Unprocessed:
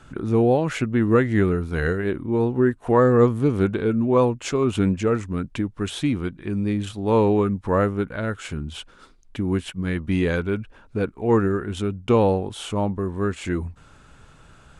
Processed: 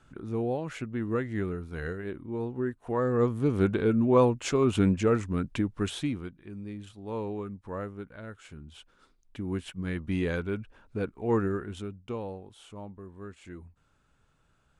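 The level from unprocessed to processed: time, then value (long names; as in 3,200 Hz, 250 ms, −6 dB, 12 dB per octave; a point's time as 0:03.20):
0:02.95 −12 dB
0:03.72 −3 dB
0:05.83 −3 dB
0:06.45 −16 dB
0:08.59 −16 dB
0:09.78 −7.5 dB
0:11.58 −7.5 dB
0:12.22 −19 dB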